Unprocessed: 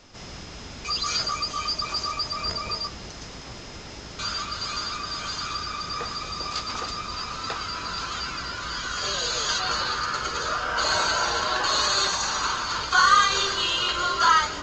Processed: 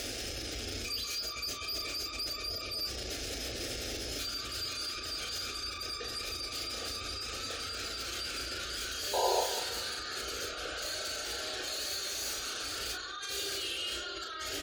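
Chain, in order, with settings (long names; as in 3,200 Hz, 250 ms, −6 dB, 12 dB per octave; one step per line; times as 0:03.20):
sign of each sample alone
high-pass filter 40 Hz 12 dB per octave
notch filter 2,000 Hz, Q 21
gate on every frequency bin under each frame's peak −20 dB strong
brickwall limiter −25 dBFS, peak gain reduction 5 dB
phaser with its sweep stopped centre 410 Hz, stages 4
sound drawn into the spectrogram noise, 0:09.13–0:09.41, 360–1,000 Hz −25 dBFS
tape wow and flutter 19 cents
double-tracking delay 35 ms −6 dB
delay with a low-pass on its return 193 ms, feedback 35%, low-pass 3,800 Hz, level −11 dB
on a send at −11 dB: convolution reverb, pre-delay 56 ms
on the sum: level −6 dB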